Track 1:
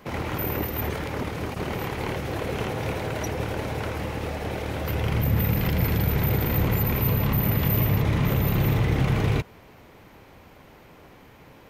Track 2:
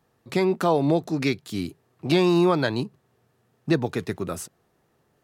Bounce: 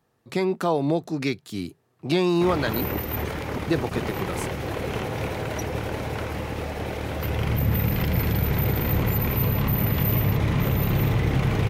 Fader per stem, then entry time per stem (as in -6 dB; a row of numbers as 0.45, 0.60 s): 0.0, -2.0 dB; 2.35, 0.00 s